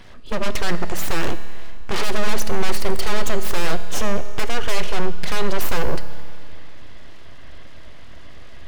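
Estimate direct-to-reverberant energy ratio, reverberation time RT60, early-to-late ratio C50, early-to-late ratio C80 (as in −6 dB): 11.0 dB, 2.2 s, 12.5 dB, 13.0 dB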